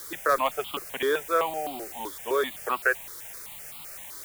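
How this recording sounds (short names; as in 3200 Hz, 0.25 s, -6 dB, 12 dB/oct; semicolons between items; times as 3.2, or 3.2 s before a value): a quantiser's noise floor 8-bit, dither triangular; notches that jump at a steady rate 7.8 Hz 720–1700 Hz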